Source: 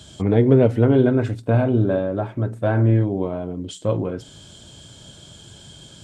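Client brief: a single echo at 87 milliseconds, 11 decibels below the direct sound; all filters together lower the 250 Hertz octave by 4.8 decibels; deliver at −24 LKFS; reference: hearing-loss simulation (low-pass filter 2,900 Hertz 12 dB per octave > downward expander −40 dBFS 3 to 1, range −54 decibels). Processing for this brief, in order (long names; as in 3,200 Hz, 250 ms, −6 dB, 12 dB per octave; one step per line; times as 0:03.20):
low-pass filter 2,900 Hz 12 dB per octave
parametric band 250 Hz −6 dB
single-tap delay 87 ms −11 dB
downward expander −40 dBFS 3 to 1, range −54 dB
level −2.5 dB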